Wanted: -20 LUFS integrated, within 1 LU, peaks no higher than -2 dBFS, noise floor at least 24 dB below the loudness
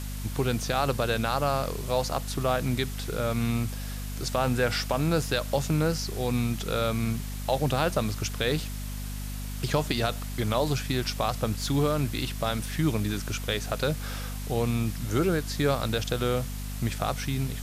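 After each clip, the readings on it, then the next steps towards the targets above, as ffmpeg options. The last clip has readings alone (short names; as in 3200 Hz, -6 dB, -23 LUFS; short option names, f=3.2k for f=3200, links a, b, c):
hum 50 Hz; harmonics up to 250 Hz; hum level -32 dBFS; noise floor -34 dBFS; noise floor target -53 dBFS; loudness -28.5 LUFS; peak -12.0 dBFS; loudness target -20.0 LUFS
-> -af "bandreject=f=50:t=h:w=6,bandreject=f=100:t=h:w=6,bandreject=f=150:t=h:w=6,bandreject=f=200:t=h:w=6,bandreject=f=250:t=h:w=6"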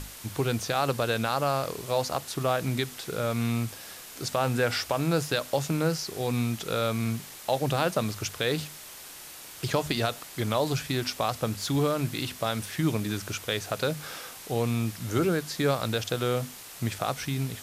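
hum none; noise floor -45 dBFS; noise floor target -53 dBFS
-> -af "afftdn=nr=8:nf=-45"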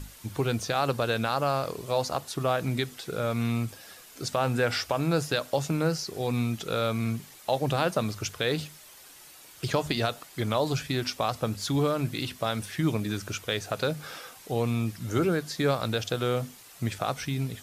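noise floor -51 dBFS; noise floor target -53 dBFS
-> -af "afftdn=nr=6:nf=-51"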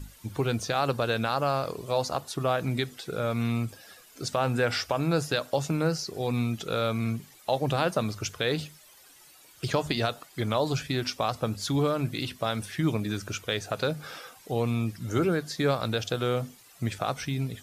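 noise floor -55 dBFS; loudness -29.0 LUFS; peak -12.5 dBFS; loudness target -20.0 LUFS
-> -af "volume=9dB"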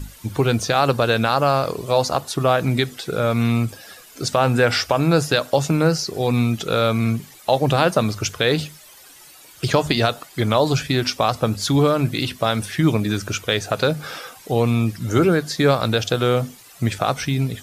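loudness -20.0 LUFS; peak -3.5 dBFS; noise floor -46 dBFS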